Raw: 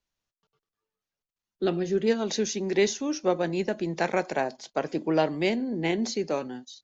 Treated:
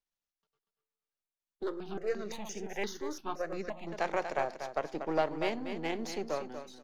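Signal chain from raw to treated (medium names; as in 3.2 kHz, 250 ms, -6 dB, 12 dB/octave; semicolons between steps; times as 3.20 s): partial rectifier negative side -7 dB; peaking EQ 90 Hz -6 dB 2.5 oct; feedback delay 239 ms, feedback 23%, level -8.5 dB; dynamic bell 800 Hz, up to +6 dB, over -41 dBFS, Q 0.83; 1.63–3.87 s: stepped phaser 5.8 Hz 710–4100 Hz; trim -7 dB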